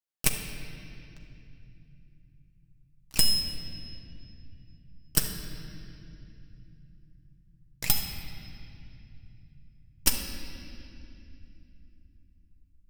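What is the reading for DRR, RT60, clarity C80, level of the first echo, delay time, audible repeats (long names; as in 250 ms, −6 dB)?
1.5 dB, 2.6 s, 5.5 dB, no echo audible, no echo audible, no echo audible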